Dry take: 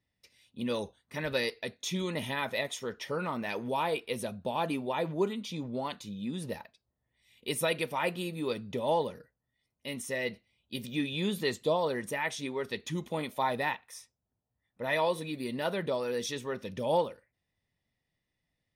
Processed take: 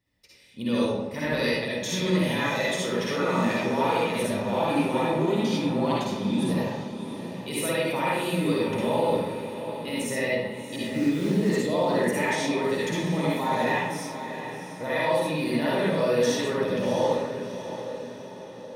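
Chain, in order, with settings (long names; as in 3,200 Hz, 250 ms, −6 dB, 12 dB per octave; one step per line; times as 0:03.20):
0:10.76–0:11.50: running median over 15 samples
brickwall limiter −26 dBFS, peak gain reduction 9.5 dB
feedback delay with all-pass diffusion 691 ms, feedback 52%, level −10 dB
convolution reverb RT60 1.1 s, pre-delay 50 ms, DRR −6.5 dB
level +2 dB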